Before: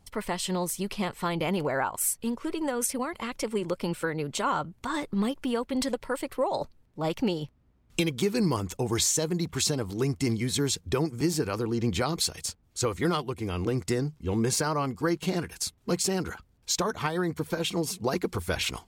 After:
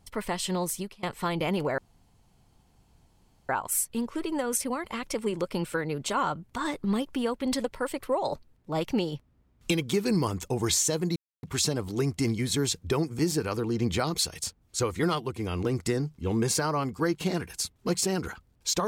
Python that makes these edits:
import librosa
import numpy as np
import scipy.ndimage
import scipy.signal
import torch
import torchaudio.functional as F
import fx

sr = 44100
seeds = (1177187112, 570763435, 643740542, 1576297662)

y = fx.edit(x, sr, fx.fade_out_to(start_s=0.78, length_s=0.25, curve='qua', floor_db=-23.5),
    fx.insert_room_tone(at_s=1.78, length_s=1.71),
    fx.insert_silence(at_s=9.45, length_s=0.27), tone=tone)